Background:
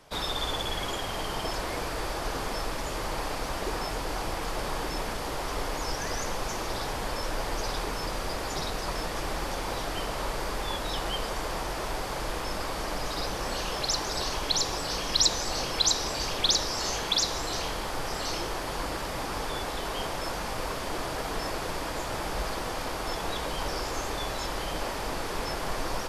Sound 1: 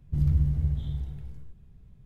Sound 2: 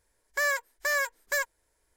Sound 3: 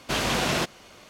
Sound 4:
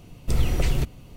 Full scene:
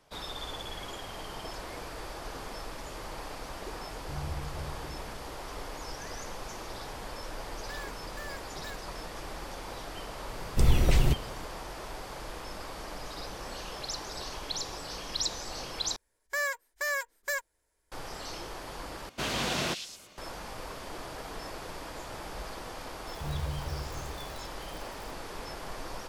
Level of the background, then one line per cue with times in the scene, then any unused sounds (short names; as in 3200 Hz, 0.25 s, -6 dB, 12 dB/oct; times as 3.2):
background -8.5 dB
3.96 add 1 -14.5 dB
7.32 add 2 -15 dB + soft clip -23 dBFS
10.29 add 4 -0.5 dB
15.96 replace with 2 -4 dB
19.09 replace with 3 -6.5 dB + delay with a stepping band-pass 0.109 s, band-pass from 3900 Hz, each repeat 0.7 oct, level -1.5 dB
23.08 add 1 -11.5 dB + switching spikes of -24.5 dBFS